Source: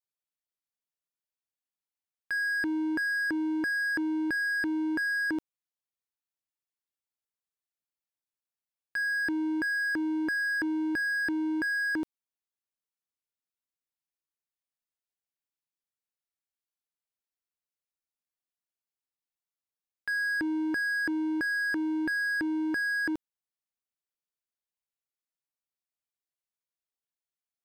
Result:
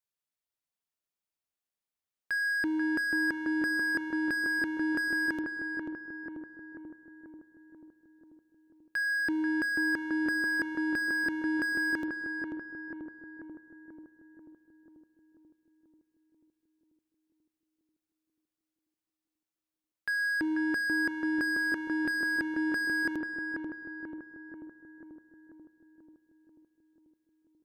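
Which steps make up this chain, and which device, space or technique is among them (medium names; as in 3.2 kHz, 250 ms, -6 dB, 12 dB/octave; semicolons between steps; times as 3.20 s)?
dub delay into a spring reverb (filtered feedback delay 488 ms, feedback 66%, low-pass 1.4 kHz, level -3 dB; spring tank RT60 1.7 s, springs 33 ms, chirp 35 ms, DRR 15.5 dB)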